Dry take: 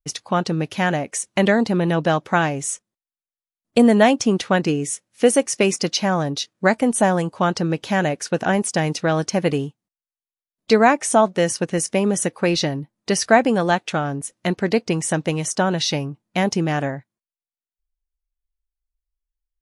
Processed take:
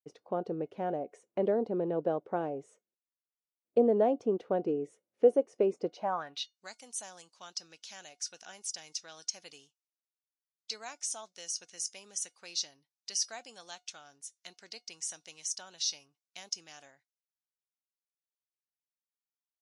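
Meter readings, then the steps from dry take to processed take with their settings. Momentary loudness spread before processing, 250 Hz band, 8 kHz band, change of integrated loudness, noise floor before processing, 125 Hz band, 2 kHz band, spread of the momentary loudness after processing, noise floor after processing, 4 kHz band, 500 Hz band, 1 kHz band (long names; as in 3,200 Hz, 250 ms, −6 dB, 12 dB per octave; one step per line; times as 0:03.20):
9 LU, −19.0 dB, −11.5 dB, −14.0 dB, below −85 dBFS, −25.0 dB, −26.5 dB, 19 LU, below −85 dBFS, −12.5 dB, −12.0 dB, −18.0 dB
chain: dynamic equaliser 1,900 Hz, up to −6 dB, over −35 dBFS, Q 1.9
band-pass filter sweep 450 Hz → 5,700 Hz, 0:05.92–0:06.57
tuned comb filter 720 Hz, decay 0.18 s, harmonics all, mix 50%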